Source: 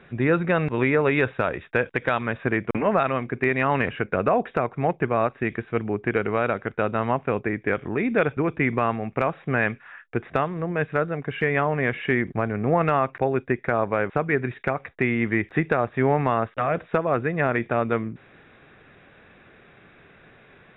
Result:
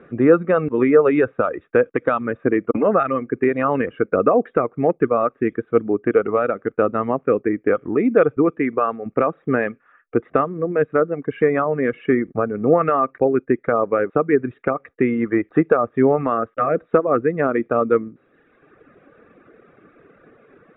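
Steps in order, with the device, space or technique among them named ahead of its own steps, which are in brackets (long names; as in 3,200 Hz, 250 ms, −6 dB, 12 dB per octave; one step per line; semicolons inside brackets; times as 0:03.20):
0:08.50–0:09.06: low-shelf EQ 190 Hz −8.5 dB
reverb reduction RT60 1.2 s
inside a cardboard box (low-pass filter 2,500 Hz 12 dB per octave; hollow resonant body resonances 300/460/1,200 Hz, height 14 dB, ringing for 20 ms)
level −4.5 dB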